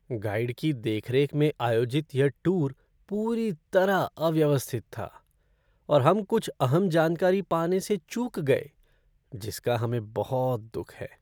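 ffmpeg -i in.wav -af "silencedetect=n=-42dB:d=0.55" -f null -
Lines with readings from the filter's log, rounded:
silence_start: 5.17
silence_end: 5.89 | silence_duration: 0.72
silence_start: 8.67
silence_end: 9.32 | silence_duration: 0.66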